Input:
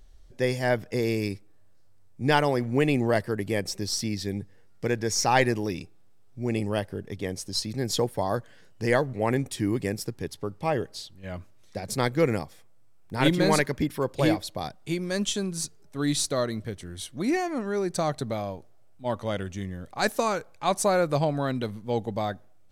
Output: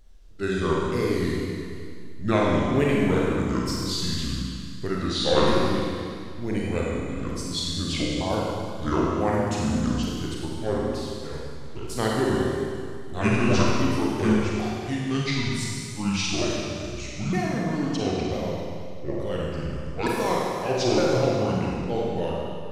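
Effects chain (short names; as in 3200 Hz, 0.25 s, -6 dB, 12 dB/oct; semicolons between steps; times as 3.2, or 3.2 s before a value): repeated pitch sweeps -10 st, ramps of 0.912 s; Schroeder reverb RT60 2.3 s, combs from 33 ms, DRR -4 dB; wow and flutter 26 cents; gain -2 dB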